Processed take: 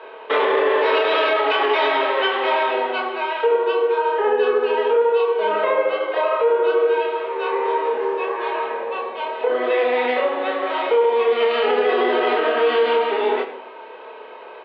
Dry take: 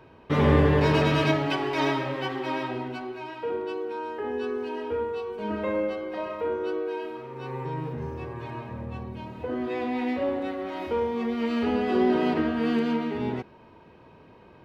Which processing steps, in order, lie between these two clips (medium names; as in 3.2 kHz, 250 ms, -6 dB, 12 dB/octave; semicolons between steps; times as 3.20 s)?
tracing distortion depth 0.024 ms; elliptic band-pass 450–3600 Hz, stop band 50 dB; in parallel at +2 dB: compression, threshold -36 dBFS, peak gain reduction 14 dB; on the sum: vibrato 13 Hz 35 cents; doubling 28 ms -2 dB; simulated room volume 3500 m³, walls furnished, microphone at 1.5 m; loudness maximiser +15.5 dB; trim -8.5 dB